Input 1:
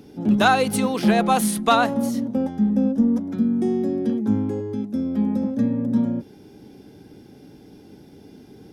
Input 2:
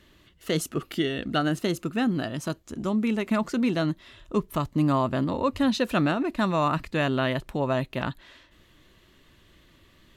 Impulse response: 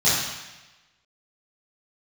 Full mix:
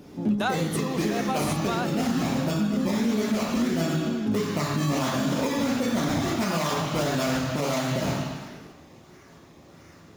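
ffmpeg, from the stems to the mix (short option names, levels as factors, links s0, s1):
-filter_complex "[0:a]volume=0.794[s0];[1:a]highpass=f=190:p=1,bass=f=250:g=-2,treble=f=4000:g=-15,acrusher=samples=21:mix=1:aa=0.000001:lfo=1:lforange=21:lforate=1.5,volume=1.26,asplit=2[s1][s2];[s2]volume=0.335[s3];[2:a]atrim=start_sample=2205[s4];[s3][s4]afir=irnorm=-1:irlink=0[s5];[s0][s1][s5]amix=inputs=3:normalize=0,alimiter=limit=0.15:level=0:latency=1:release=377"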